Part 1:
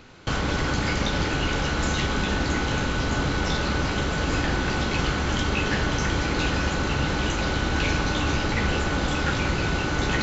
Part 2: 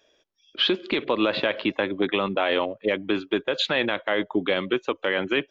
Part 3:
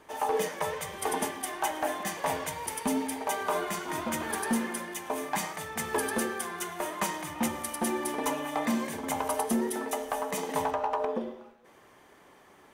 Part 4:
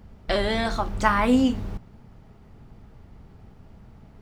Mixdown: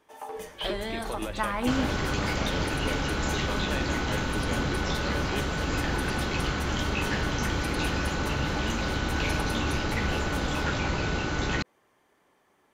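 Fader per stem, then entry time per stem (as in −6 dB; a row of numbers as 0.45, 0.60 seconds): −4.0, −13.5, −10.0, −9.0 decibels; 1.40, 0.00, 0.00, 0.35 seconds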